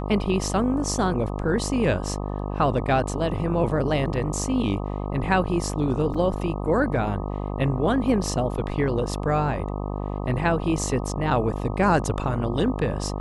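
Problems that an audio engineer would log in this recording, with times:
mains buzz 50 Hz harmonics 25 −29 dBFS
0:06.14–0:06.15: drop-out 5.1 ms

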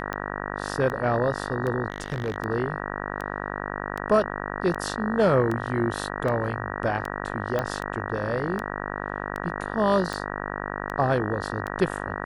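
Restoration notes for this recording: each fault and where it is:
mains buzz 50 Hz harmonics 38 −32 dBFS
scratch tick 78 rpm −18 dBFS
0:01.90–0:02.36: clipping −23 dBFS
0:07.59: click −13 dBFS

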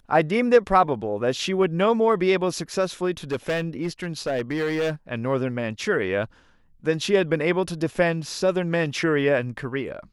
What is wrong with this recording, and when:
0:03.31–0:04.91: clipping −20.5 dBFS

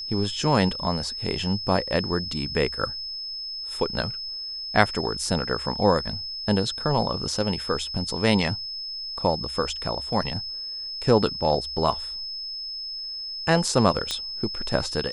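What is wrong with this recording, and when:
whistle 5,200 Hz −31 dBFS
0:14.11: click −11 dBFS

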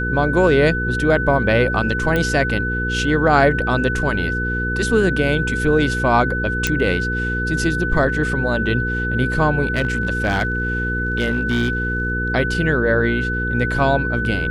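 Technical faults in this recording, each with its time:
mains hum 60 Hz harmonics 8 −24 dBFS
whistle 1,500 Hz −22 dBFS
0:02.16: click −8 dBFS
0:06.67: click −4 dBFS
0:09.73–0:12.12: clipping −13 dBFS

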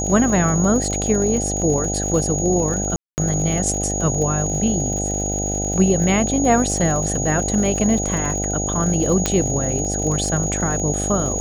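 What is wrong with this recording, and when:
mains buzz 50 Hz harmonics 16 −25 dBFS
surface crackle 90 per second −27 dBFS
whistle 6,700 Hz −24 dBFS
0:02.96–0:03.18: drop-out 219 ms
0:09.26: click −3 dBFS

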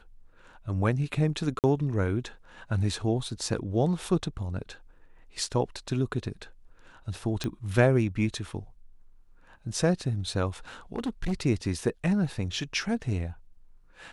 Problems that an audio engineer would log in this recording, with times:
0:01.59–0:01.64: drop-out 48 ms
0:07.44: click −17 dBFS
0:10.96–0:11.33: clipping −25.5 dBFS

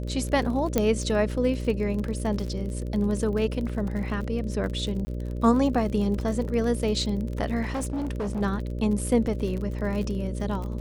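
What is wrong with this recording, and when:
mains buzz 60 Hz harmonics 10 −31 dBFS
surface crackle 40 per second −32 dBFS
0:00.78: click −8 dBFS
0:05.05–0:05.07: drop-out 20 ms
0:07.62–0:08.42: clipping −25.5 dBFS

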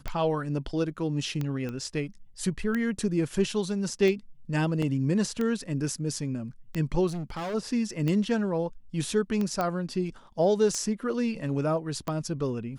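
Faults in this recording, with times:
scratch tick 45 rpm −18 dBFS
0:01.69: click −23 dBFS
0:04.82: drop-out 4.2 ms
0:07.07–0:07.55: clipping −30.5 dBFS
0:09.61: click −15 dBFS

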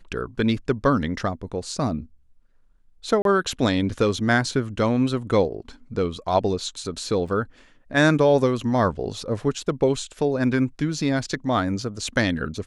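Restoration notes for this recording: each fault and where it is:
0:03.22–0:03.25: drop-out 32 ms
0:07.28–0:07.29: drop-out 5.3 ms

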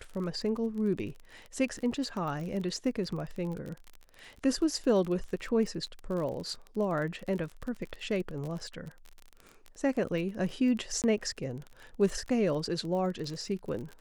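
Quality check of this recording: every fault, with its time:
surface crackle 32 per second −36 dBFS
0:11.02–0:11.04: drop-out 18 ms

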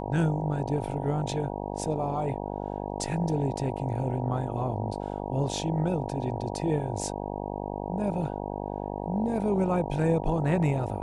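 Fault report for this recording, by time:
mains buzz 50 Hz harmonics 19 −34 dBFS

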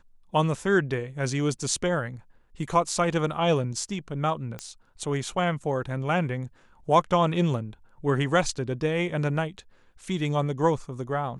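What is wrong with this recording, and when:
0:04.59: click −19 dBFS

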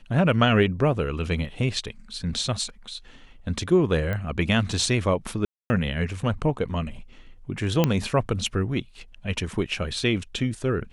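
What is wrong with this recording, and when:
0:04.13: click −17 dBFS
0:05.45–0:05.70: drop-out 250 ms
0:07.84: click −7 dBFS

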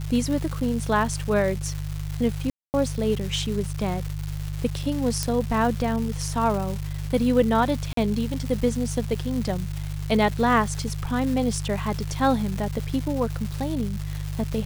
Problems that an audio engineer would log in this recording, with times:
surface crackle 520 per second −30 dBFS
mains hum 50 Hz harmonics 3 −30 dBFS
0:02.50–0:02.74: drop-out 239 ms
0:05.23: click −10 dBFS
0:07.93–0:07.97: drop-out 43 ms

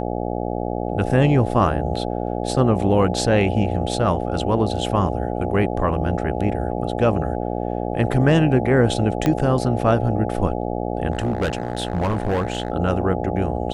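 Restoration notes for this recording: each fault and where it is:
mains buzz 60 Hz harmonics 14 −25 dBFS
0:09.26: click −7 dBFS
0:11.12–0:12.70: clipping −17 dBFS

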